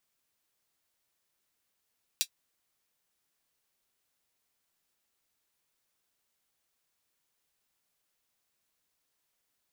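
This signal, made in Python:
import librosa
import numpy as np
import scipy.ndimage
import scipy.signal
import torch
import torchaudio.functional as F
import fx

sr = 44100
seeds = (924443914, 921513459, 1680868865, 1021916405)

y = fx.drum_hat(sr, length_s=0.24, from_hz=3500.0, decay_s=0.08)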